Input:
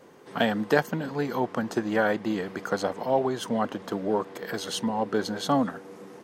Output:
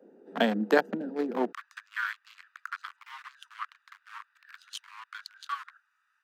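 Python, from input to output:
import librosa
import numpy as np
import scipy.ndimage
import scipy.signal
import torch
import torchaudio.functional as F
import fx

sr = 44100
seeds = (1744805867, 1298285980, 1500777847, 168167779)

y = fx.wiener(x, sr, points=41)
y = fx.steep_highpass(y, sr, hz=fx.steps((0.0, 190.0), (1.51, 1100.0)), slope=72)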